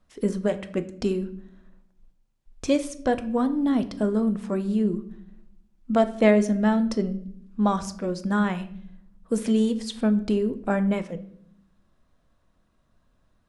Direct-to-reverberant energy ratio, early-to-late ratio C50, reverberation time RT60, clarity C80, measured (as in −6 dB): 10.0 dB, 15.0 dB, 0.65 s, 18.5 dB